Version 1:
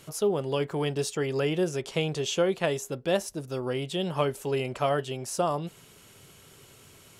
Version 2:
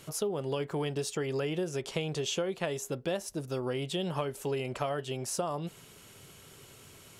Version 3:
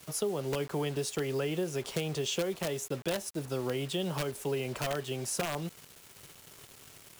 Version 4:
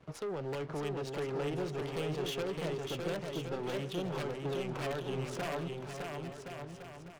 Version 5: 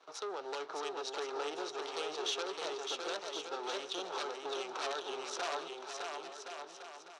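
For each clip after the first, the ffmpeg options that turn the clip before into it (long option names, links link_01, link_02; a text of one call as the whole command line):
ffmpeg -i in.wav -af "acompressor=threshold=-29dB:ratio=6" out.wav
ffmpeg -i in.wav -filter_complex "[0:a]equalizer=frequency=10000:width=5.1:gain=3.5,acrossover=split=170|450|3000[link_01][link_02][link_03][link_04];[link_03]aeval=exprs='(mod(25.1*val(0)+1,2)-1)/25.1':channel_layout=same[link_05];[link_01][link_02][link_05][link_04]amix=inputs=4:normalize=0,acrusher=bits=7:mix=0:aa=0.000001" out.wav
ffmpeg -i in.wav -filter_complex "[0:a]adynamicsmooth=sensitivity=6.5:basefreq=1300,asoftclip=type=tanh:threshold=-33.5dB,asplit=2[link_01][link_02];[link_02]aecho=0:1:610|1068|1411|1668|1861:0.631|0.398|0.251|0.158|0.1[link_03];[link_01][link_03]amix=inputs=2:normalize=0" out.wav
ffmpeg -i in.wav -af "highpass=frequency=410:width=0.5412,highpass=frequency=410:width=1.3066,equalizer=frequency=550:width_type=q:width=4:gain=-5,equalizer=frequency=850:width_type=q:width=4:gain=4,equalizer=frequency=1300:width_type=q:width=4:gain=6,equalizer=frequency=2000:width_type=q:width=4:gain=-4,equalizer=frequency=3900:width_type=q:width=4:gain=10,equalizer=frequency=5800:width_type=q:width=4:gain=9,lowpass=frequency=9000:width=0.5412,lowpass=frequency=9000:width=1.3066" out.wav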